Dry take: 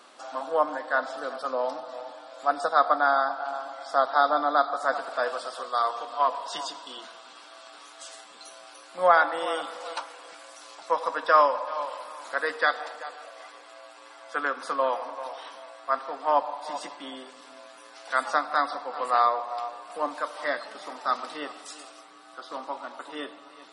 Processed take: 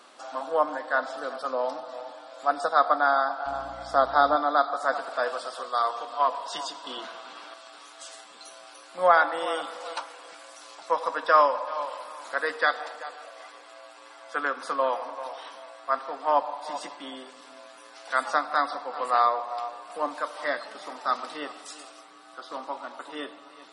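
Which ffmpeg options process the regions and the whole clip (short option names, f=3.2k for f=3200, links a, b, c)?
-filter_complex "[0:a]asettb=1/sr,asplit=3[a][b][c];[a]atrim=end=3.464[d];[b]atrim=start=3.46:end=4.36,asetpts=PTS-STARTPTS,afade=t=in:d=0.004:c=qsin,afade=t=out:st=0.896:d=0.004:c=qsin,equalizer=f=270:w=0.68:g=5,aeval=exprs='val(0)+0.00355*(sin(2*PI*60*n/s)+sin(2*PI*2*60*n/s)/2+sin(2*PI*3*60*n/s)/3+sin(2*PI*4*60*n/s)/4+sin(2*PI*5*60*n/s)/5)':c=same[e];[c]atrim=start=4.356[f];[d][e]acrossfade=d=0.004:c1=hsin:c2=qsin[g];[g][f]acrossfade=d=0.004:c1=qsin:c2=hsin,asettb=1/sr,asplit=3[h][i][j];[h]atrim=end=6.844[k];[i]atrim=start=6.84:end=7.54,asetpts=PTS-STARTPTS,afade=t=in:d=0.004:c=qsin,afade=t=out:st=0.696:d=0.004:c=qsin,lowpass=f=3.2k:p=1,acontrast=56[l];[j]atrim=start=7.536[m];[k][l]acrossfade=d=0.004:c1=hsin:c2=qsin[n];[n][m]acrossfade=d=0.004:c1=qsin:c2=hsin"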